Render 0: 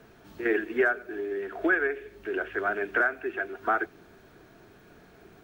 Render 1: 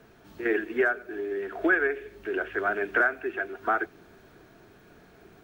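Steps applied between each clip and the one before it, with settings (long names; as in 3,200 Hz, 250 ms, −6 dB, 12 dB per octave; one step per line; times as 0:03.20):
speech leveller 2 s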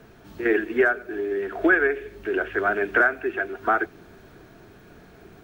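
low-shelf EQ 200 Hz +4.5 dB
level +4 dB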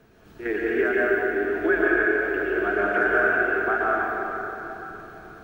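dense smooth reverb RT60 3.8 s, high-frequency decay 0.65×, pre-delay 105 ms, DRR −6 dB
level −6.5 dB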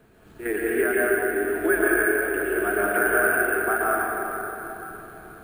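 bad sample-rate conversion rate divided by 4×, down filtered, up hold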